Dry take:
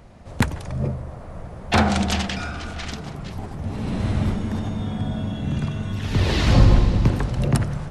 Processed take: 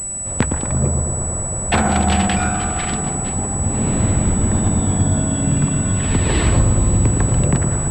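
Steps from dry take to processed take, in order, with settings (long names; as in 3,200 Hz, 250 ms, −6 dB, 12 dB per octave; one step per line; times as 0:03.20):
downward compressor 6 to 1, threshold −21 dBFS, peak gain reduction 13 dB
on a send: bucket-brigade delay 114 ms, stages 1,024, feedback 77%, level −6.5 dB
on the sum: switching amplifier with a slow clock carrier 7,900 Hz
level +7.5 dB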